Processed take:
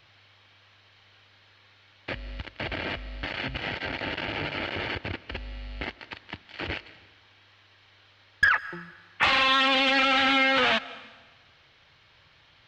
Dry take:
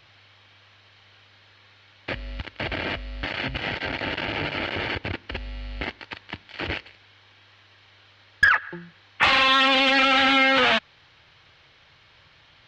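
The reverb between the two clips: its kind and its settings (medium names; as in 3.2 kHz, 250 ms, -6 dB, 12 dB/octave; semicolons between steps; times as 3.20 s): algorithmic reverb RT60 1.3 s, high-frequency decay 1×, pre-delay 110 ms, DRR 18.5 dB; trim -3.5 dB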